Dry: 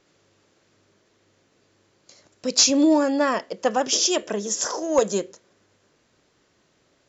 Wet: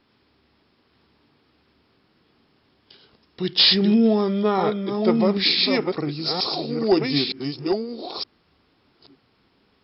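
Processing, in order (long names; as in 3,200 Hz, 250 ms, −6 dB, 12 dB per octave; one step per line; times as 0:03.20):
delay that plays each chunk backwards 659 ms, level −4.5 dB
speed change −28%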